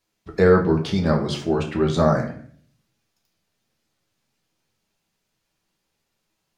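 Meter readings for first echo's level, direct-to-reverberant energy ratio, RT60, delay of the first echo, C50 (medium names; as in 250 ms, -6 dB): no echo, 0.5 dB, 0.50 s, no echo, 9.0 dB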